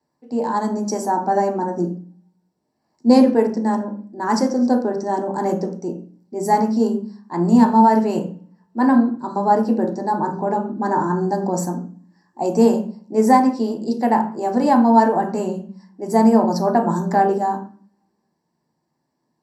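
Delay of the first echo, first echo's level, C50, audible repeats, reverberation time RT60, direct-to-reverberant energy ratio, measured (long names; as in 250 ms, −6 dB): no echo audible, no echo audible, 9.5 dB, no echo audible, 0.40 s, 2.0 dB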